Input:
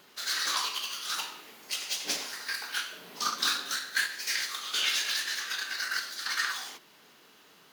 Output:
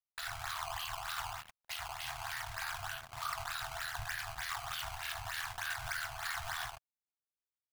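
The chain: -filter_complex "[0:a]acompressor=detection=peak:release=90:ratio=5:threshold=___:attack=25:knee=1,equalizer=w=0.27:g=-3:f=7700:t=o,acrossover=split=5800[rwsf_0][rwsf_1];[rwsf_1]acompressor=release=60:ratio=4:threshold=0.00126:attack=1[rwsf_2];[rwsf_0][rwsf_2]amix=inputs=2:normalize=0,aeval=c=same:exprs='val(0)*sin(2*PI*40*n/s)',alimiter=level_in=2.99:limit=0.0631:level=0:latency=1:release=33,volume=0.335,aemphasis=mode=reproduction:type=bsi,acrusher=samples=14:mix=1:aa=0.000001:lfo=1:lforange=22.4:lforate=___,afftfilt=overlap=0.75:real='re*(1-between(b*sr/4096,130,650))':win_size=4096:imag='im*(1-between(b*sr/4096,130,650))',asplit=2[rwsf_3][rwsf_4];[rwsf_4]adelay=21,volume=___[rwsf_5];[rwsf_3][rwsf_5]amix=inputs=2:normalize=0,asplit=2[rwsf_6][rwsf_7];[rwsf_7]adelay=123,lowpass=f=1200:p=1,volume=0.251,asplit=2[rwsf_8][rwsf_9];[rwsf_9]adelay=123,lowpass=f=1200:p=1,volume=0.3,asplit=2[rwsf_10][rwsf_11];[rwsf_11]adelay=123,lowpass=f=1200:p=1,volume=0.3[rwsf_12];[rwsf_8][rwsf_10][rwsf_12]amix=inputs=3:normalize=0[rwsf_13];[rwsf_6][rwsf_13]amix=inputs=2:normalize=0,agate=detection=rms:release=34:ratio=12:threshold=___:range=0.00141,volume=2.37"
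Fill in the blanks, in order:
0.0112, 3.3, 0.282, 0.002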